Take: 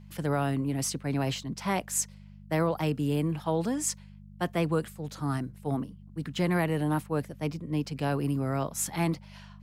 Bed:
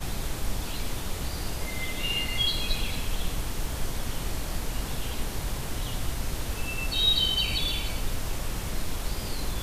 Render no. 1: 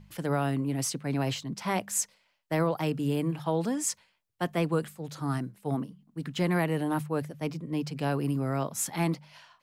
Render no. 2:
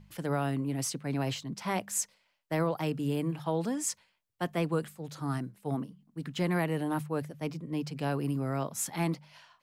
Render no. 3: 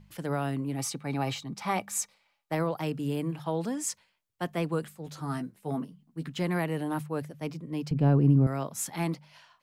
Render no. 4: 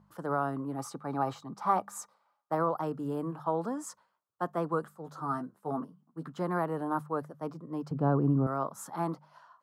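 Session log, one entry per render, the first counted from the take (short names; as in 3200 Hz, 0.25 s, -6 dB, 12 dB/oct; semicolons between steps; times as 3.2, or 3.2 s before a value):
de-hum 50 Hz, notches 4
gain -2.5 dB
0.76–2.55 small resonant body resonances 830/1200/2300/3800 Hz, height 11 dB; 5.05–6.29 doubler 12 ms -6.5 dB; 7.91–8.47 tilt -4.5 dB/oct
HPF 290 Hz 6 dB/oct; resonant high shelf 1700 Hz -11 dB, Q 3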